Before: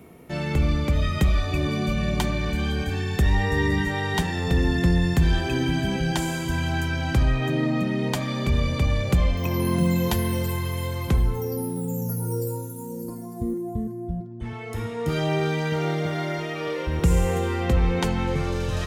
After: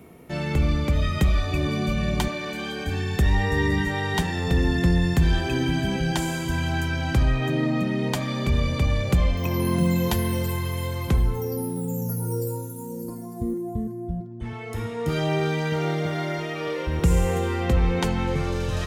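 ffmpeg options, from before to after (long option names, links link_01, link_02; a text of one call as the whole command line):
ffmpeg -i in.wav -filter_complex "[0:a]asettb=1/sr,asplit=3[link_01][link_02][link_03];[link_01]atrim=end=2.284[link_04];[link_02]atrim=start=2.28:end=2.86,asetpts=PTS-STARTPTS,afade=type=in:duration=0.004:curve=qsin,afade=type=out:start_time=0.576:duration=0.004:curve=qsin,highpass=280[link_05];[link_03]atrim=start=2.856[link_06];[link_04][link_05]acrossfade=duration=0.004:curve1=hsin:curve2=qsin[link_07];[link_07][link_06]acrossfade=duration=0.004:curve1=qsin:curve2=hsin" out.wav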